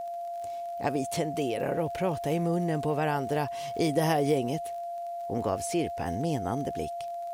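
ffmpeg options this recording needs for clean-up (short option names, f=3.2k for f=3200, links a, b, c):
-af "adeclick=t=4,bandreject=f=690:w=30,agate=range=-21dB:threshold=-28dB"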